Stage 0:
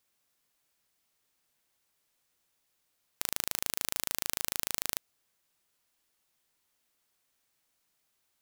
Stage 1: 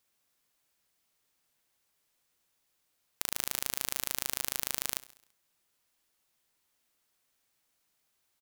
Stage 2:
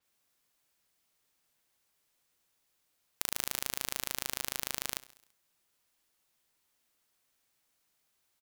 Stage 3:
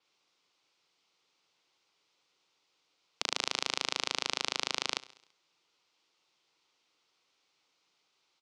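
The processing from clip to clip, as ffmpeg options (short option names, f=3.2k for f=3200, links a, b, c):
-af "aecho=1:1:67|134|201|268|335:0.112|0.0617|0.0339|0.0187|0.0103"
-af "adynamicequalizer=threshold=0.00251:dfrequency=5900:dqfactor=0.7:tfrequency=5900:tqfactor=0.7:attack=5:release=100:ratio=0.375:range=2:mode=cutabove:tftype=highshelf"
-af "highpass=220,equalizer=f=230:t=q:w=4:g=-10,equalizer=f=640:t=q:w=4:g=-7,equalizer=f=1.7k:t=q:w=4:g=-10,lowpass=f=5.4k:w=0.5412,lowpass=f=5.4k:w=1.3066,volume=8dB"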